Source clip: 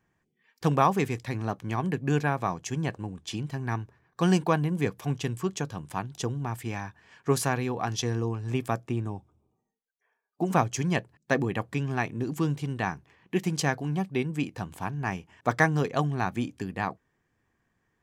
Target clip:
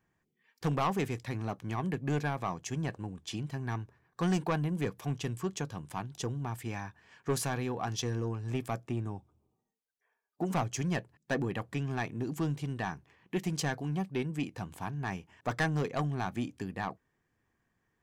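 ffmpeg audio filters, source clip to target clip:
-af "asoftclip=type=tanh:threshold=-19.5dB,volume=-3.5dB"

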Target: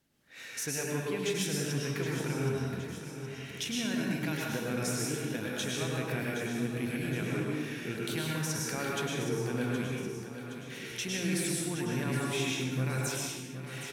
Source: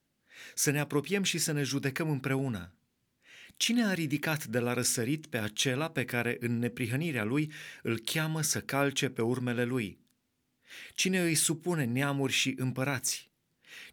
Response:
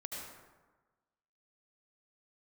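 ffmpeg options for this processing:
-filter_complex "[0:a]acompressor=threshold=-46dB:ratio=2,aecho=1:1:769|1538|2307|3076|3845|4614:0.299|0.161|0.0871|0.047|0.0254|0.0137[a];[1:a]atrim=start_sample=2205,afade=t=out:st=0.38:d=0.01,atrim=end_sample=17199,asetrate=31752,aresample=44100[b];[a][b]afir=irnorm=-1:irlink=0,volume=6dB"

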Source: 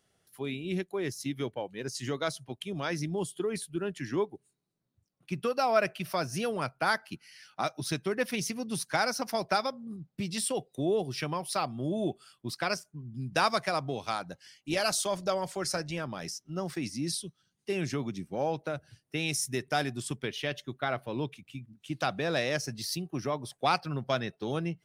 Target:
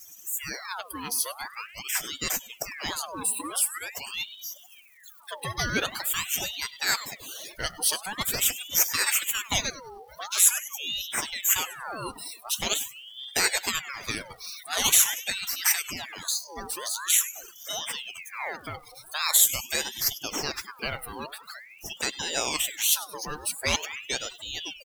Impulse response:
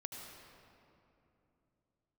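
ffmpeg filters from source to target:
-filter_complex "[0:a]aeval=exprs='val(0)+0.5*0.0112*sgn(val(0))':c=same,crystalizer=i=4.5:c=0,asplit=2[a][b];[b]aecho=0:1:99|198|297|396|495|594:0.2|0.112|0.0626|0.035|0.0196|0.011[c];[a][c]amix=inputs=2:normalize=0,acrusher=bits=3:mode=log:mix=0:aa=0.000001,equalizer=f=6.8k:t=o:w=0.24:g=-13,asplit=2[d][e];[e]aecho=0:1:571:0.0944[f];[d][f]amix=inputs=2:normalize=0,afftdn=nr=24:nf=-33,tiltshelf=f=1.1k:g=-3.5,aeval=exprs='val(0)*sin(2*PI*2000*n/s+2000*0.7/0.45*sin(2*PI*0.45*n/s))':c=same,volume=-1dB"

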